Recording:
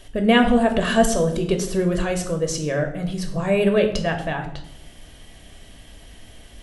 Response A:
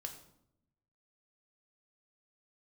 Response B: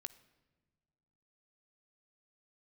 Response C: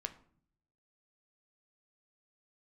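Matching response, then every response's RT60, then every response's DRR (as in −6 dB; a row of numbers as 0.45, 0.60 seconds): A; 0.75 s, non-exponential decay, 0.55 s; 4.0, 12.5, 7.0 decibels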